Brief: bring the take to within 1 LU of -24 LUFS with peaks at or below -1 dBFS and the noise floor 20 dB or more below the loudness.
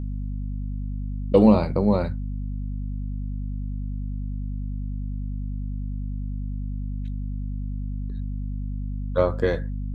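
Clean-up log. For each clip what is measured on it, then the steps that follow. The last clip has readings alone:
hum 50 Hz; harmonics up to 250 Hz; hum level -26 dBFS; loudness -27.0 LUFS; peak -3.5 dBFS; loudness target -24.0 LUFS
-> notches 50/100/150/200/250 Hz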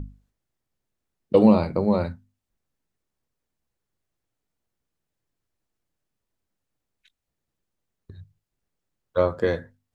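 hum none; loudness -22.0 LUFS; peak -3.5 dBFS; loudness target -24.0 LUFS
-> gain -2 dB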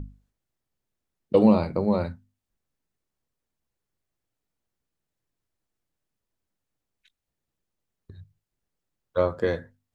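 loudness -24.0 LUFS; peak -5.5 dBFS; noise floor -85 dBFS

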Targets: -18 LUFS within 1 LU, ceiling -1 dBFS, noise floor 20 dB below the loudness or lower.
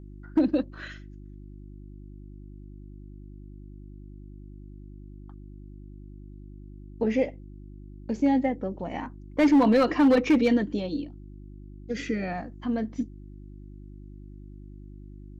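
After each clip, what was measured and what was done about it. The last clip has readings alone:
clipped 0.6%; flat tops at -14.5 dBFS; hum 50 Hz; harmonics up to 350 Hz; hum level -42 dBFS; loudness -25.5 LUFS; peak -14.5 dBFS; loudness target -18.0 LUFS
-> clip repair -14.5 dBFS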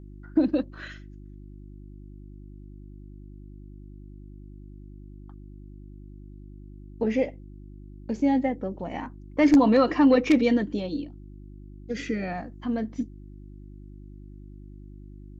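clipped 0.0%; hum 50 Hz; harmonics up to 350 Hz; hum level -42 dBFS
-> de-hum 50 Hz, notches 7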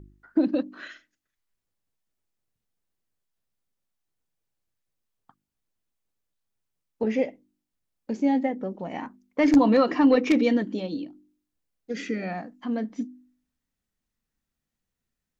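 hum none; loudness -25.0 LUFS; peak -7.0 dBFS; loudness target -18.0 LUFS
-> gain +7 dB; limiter -1 dBFS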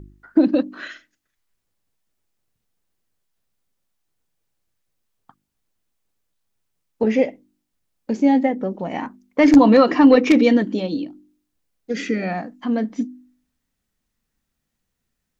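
loudness -18.0 LUFS; peak -1.0 dBFS; noise floor -78 dBFS

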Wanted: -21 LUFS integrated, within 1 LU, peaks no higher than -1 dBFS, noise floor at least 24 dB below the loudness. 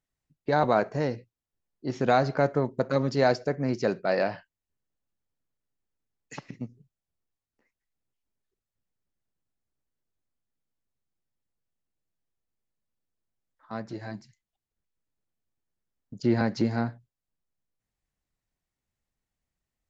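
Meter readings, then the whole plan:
loudness -27.0 LUFS; peak -9.5 dBFS; loudness target -21.0 LUFS
-> gain +6 dB

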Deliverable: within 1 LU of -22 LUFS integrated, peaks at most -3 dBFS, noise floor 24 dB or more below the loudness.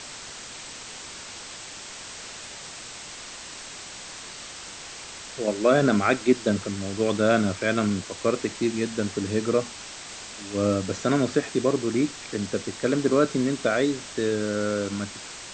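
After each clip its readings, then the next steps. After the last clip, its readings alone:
noise floor -40 dBFS; noise floor target -49 dBFS; loudness -25.0 LUFS; peak -7.0 dBFS; loudness target -22.0 LUFS
-> denoiser 9 dB, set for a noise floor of -40 dBFS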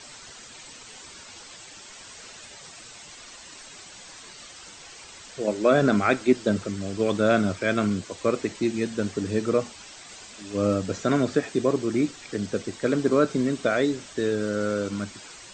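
noise floor -45 dBFS; noise floor target -49 dBFS
-> denoiser 6 dB, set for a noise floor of -45 dBFS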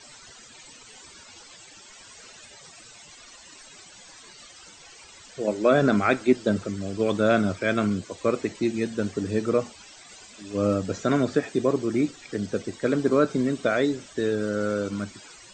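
noise floor -49 dBFS; loudness -25.0 LUFS; peak -7.0 dBFS; loudness target -22.0 LUFS
-> gain +3 dB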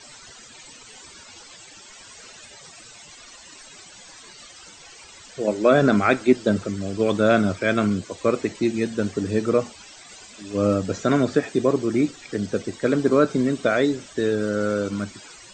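loudness -22.0 LUFS; peak -4.0 dBFS; noise floor -46 dBFS

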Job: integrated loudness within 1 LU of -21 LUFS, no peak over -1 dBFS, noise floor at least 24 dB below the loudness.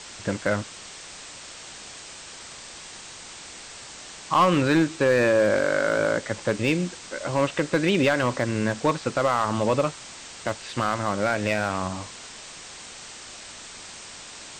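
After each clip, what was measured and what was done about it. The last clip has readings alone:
clipped 0.5%; flat tops at -13.0 dBFS; noise floor -42 dBFS; noise floor target -48 dBFS; loudness -24.0 LUFS; peak -13.0 dBFS; loudness target -21.0 LUFS
-> clip repair -13 dBFS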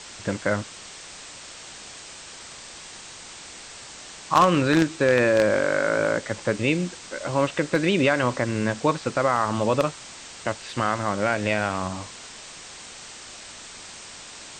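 clipped 0.0%; noise floor -42 dBFS; noise floor target -48 dBFS
-> denoiser 6 dB, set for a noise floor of -42 dBFS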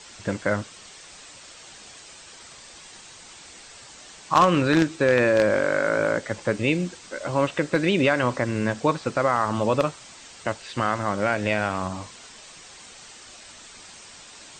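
noise floor -46 dBFS; noise floor target -48 dBFS
-> denoiser 6 dB, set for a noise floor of -46 dBFS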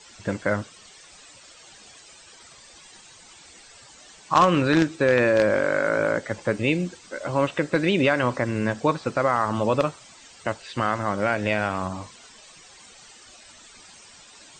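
noise floor -49 dBFS; loudness -23.5 LUFS; peak -4.0 dBFS; loudness target -21.0 LUFS
-> gain +2.5 dB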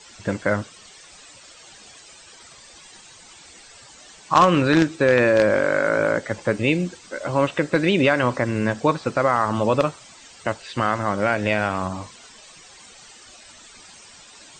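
loudness -21.0 LUFS; peak -1.5 dBFS; noise floor -47 dBFS

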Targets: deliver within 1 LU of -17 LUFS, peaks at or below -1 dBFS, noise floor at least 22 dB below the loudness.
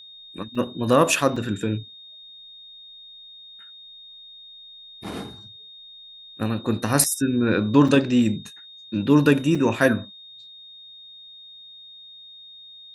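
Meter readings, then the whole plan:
dropouts 6; longest dropout 4.2 ms; steady tone 3700 Hz; tone level -42 dBFS; loudness -21.5 LUFS; peak -3.0 dBFS; loudness target -17.0 LUFS
-> interpolate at 0.55/1.36/5.04/7.04/7.88/9.55, 4.2 ms; notch 3700 Hz, Q 30; gain +4.5 dB; limiter -1 dBFS

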